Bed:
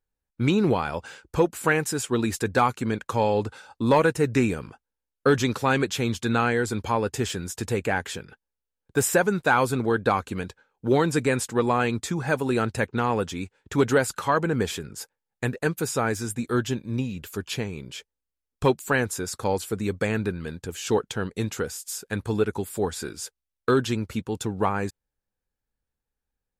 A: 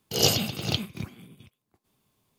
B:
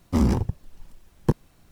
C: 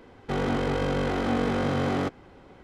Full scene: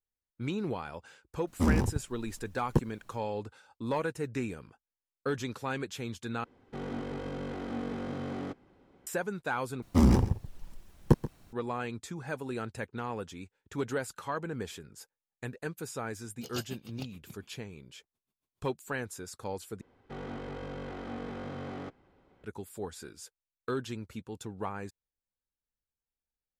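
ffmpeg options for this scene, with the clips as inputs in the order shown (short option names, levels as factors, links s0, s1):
-filter_complex "[2:a]asplit=2[s0][s1];[3:a]asplit=2[s2][s3];[0:a]volume=0.237[s4];[s2]equalizer=f=250:t=o:w=1.6:g=5[s5];[s1]aecho=1:1:132:0.178[s6];[1:a]aeval=exprs='val(0)*pow(10,-28*(0.5-0.5*cos(2*PI*7*n/s))/20)':c=same[s7];[s3]highshelf=f=6400:g=-7.5[s8];[s4]asplit=4[s9][s10][s11][s12];[s9]atrim=end=6.444[s13];[s5]atrim=end=2.63,asetpts=PTS-STARTPTS,volume=0.2[s14];[s10]atrim=start=9.066:end=9.824[s15];[s6]atrim=end=1.71,asetpts=PTS-STARTPTS,volume=0.841[s16];[s11]atrim=start=11.526:end=19.814[s17];[s8]atrim=end=2.63,asetpts=PTS-STARTPTS,volume=0.2[s18];[s12]atrim=start=22.436[s19];[s0]atrim=end=1.71,asetpts=PTS-STARTPTS,volume=0.531,afade=t=in:d=0.004:c=hsin,afade=t=out:st=1.706:d=0.004:c=hsin,adelay=1470[s20];[s7]atrim=end=2.38,asetpts=PTS-STARTPTS,volume=0.224,afade=t=in:d=0.004:c=hsin,afade=t=out:st=2.376:d=0.004:c=hsin,adelay=16300[s21];[s13][s14]acrossfade=d=0.004:c1=hsin:c2=hsin[s22];[s22][s15]acrossfade=d=0.004:c1=hsin:c2=hsin[s23];[s23][s16]acrossfade=d=0.004:c1=hsin:c2=hsin[s24];[s24][s17]acrossfade=d=0.004:c1=hsin:c2=hsin[s25];[s25][s18]acrossfade=d=0.004:c1=hsin:c2=hsin[s26];[s26][s19]acrossfade=d=0.004:c1=hsin:c2=hsin[s27];[s27][s20][s21]amix=inputs=3:normalize=0"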